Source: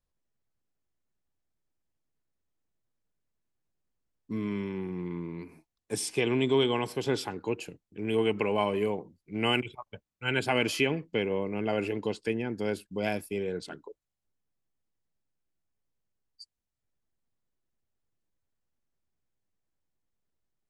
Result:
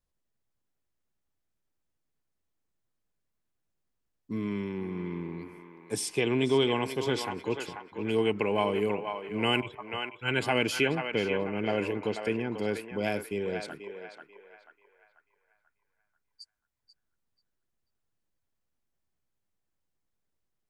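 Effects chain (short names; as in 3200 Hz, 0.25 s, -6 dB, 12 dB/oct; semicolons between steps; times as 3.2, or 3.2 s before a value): narrowing echo 0.488 s, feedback 46%, band-pass 1300 Hz, level -4.5 dB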